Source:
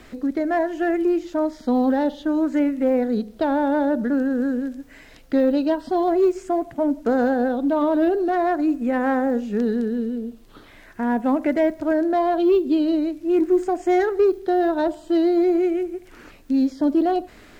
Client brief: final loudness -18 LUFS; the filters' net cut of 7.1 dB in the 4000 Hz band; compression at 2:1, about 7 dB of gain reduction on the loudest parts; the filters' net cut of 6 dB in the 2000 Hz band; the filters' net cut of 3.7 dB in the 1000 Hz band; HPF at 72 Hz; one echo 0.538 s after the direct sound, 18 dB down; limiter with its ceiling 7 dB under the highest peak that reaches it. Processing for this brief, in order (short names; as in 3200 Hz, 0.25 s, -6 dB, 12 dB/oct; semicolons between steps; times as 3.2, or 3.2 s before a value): HPF 72 Hz; bell 1000 Hz -5 dB; bell 2000 Hz -4.5 dB; bell 4000 Hz -7 dB; compressor 2:1, threshold -28 dBFS; limiter -24 dBFS; echo 0.538 s -18 dB; gain +13 dB